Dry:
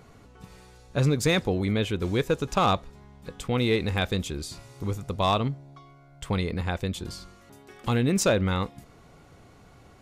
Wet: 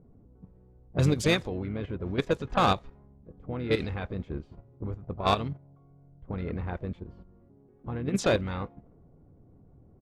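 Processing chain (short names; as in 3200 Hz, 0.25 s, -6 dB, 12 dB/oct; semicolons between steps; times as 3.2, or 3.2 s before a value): level quantiser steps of 11 dB; harmoniser -7 st -10 dB, +4 st -13 dB; low-pass opened by the level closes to 330 Hz, open at -21 dBFS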